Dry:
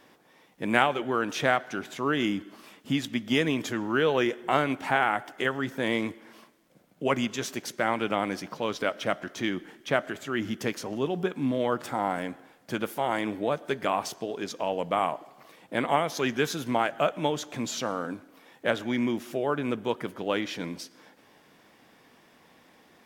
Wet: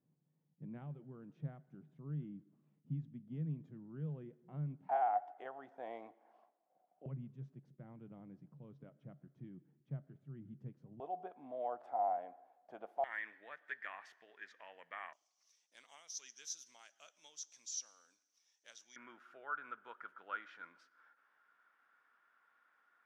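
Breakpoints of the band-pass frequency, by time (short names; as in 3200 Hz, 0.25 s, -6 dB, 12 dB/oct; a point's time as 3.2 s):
band-pass, Q 11
150 Hz
from 4.89 s 730 Hz
from 7.06 s 140 Hz
from 11 s 710 Hz
from 13.04 s 1800 Hz
from 15.13 s 5900 Hz
from 18.96 s 1400 Hz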